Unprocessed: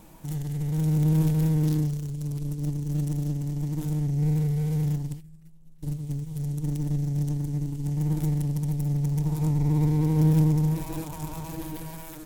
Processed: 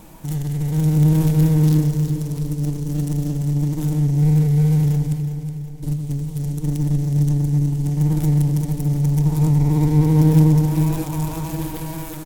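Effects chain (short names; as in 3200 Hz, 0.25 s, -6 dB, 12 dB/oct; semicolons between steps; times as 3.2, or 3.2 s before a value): feedback echo 0.367 s, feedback 50%, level -9.5 dB; on a send at -17 dB: reverb RT60 4.2 s, pre-delay 94 ms; on the sum: gain +7 dB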